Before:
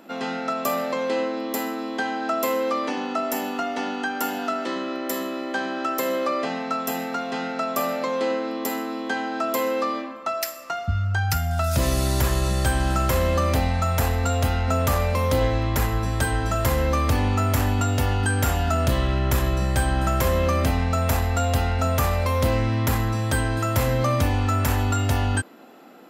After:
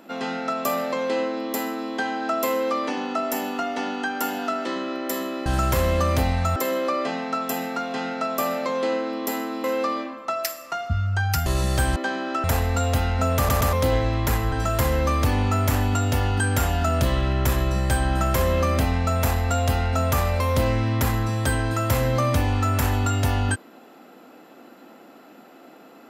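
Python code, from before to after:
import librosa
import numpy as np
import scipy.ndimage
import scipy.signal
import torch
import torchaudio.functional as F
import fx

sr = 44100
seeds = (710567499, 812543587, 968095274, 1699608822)

y = fx.edit(x, sr, fx.swap(start_s=5.46, length_s=0.48, other_s=12.83, other_length_s=1.1),
    fx.cut(start_s=9.02, length_s=0.6),
    fx.cut(start_s=11.44, length_s=0.89),
    fx.stutter_over(start_s=14.86, slice_s=0.12, count=3),
    fx.cut(start_s=16.01, length_s=0.37), tone=tone)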